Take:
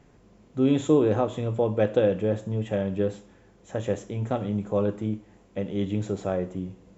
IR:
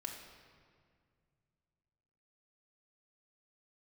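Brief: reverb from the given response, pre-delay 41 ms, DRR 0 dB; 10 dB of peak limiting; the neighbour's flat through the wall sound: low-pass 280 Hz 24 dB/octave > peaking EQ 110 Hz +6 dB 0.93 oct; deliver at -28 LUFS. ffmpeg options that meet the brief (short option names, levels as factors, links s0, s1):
-filter_complex "[0:a]alimiter=limit=0.119:level=0:latency=1,asplit=2[s0][s1];[1:a]atrim=start_sample=2205,adelay=41[s2];[s1][s2]afir=irnorm=-1:irlink=0,volume=1.19[s3];[s0][s3]amix=inputs=2:normalize=0,lowpass=f=280:w=0.5412,lowpass=f=280:w=1.3066,equalizer=f=110:t=o:w=0.93:g=6,volume=0.944"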